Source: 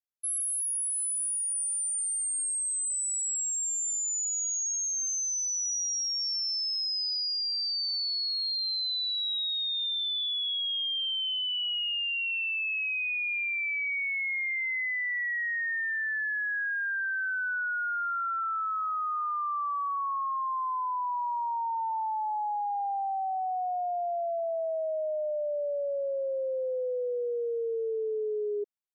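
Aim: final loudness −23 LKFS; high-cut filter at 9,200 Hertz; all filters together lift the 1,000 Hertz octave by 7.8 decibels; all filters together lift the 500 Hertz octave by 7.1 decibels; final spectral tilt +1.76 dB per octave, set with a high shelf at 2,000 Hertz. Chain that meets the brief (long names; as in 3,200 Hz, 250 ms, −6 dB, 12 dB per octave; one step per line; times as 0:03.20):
low-pass filter 9,200 Hz
parametric band 500 Hz +6 dB
parametric band 1,000 Hz +6 dB
high-shelf EQ 2,000 Hz +8 dB
level −0.5 dB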